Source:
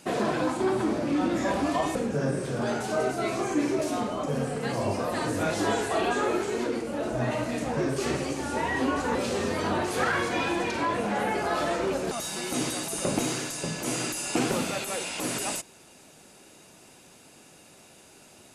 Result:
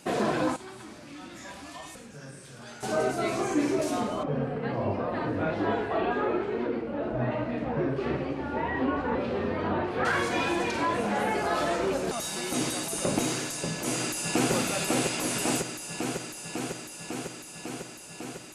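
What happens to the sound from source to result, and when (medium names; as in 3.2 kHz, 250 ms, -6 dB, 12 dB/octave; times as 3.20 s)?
0.56–2.83 s: amplifier tone stack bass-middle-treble 5-5-5
4.23–10.05 s: distance through air 390 m
13.69–14.52 s: echo throw 550 ms, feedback 80%, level -2.5 dB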